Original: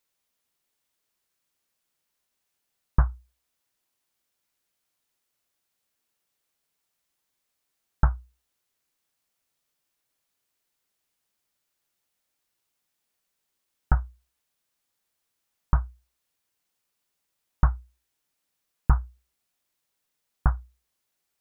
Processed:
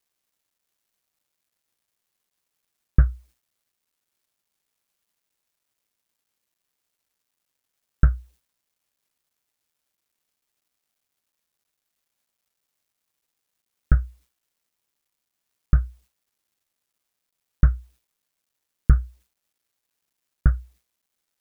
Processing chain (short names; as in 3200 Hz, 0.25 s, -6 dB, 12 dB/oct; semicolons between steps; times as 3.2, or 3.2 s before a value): Butterworth band-stop 900 Hz, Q 0.88; requantised 12-bit, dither none; gain +4.5 dB